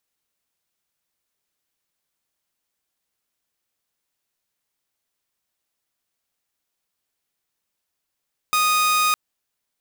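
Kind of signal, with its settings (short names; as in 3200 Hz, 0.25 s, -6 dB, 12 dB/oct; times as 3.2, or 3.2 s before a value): tone saw 1240 Hz -14 dBFS 0.61 s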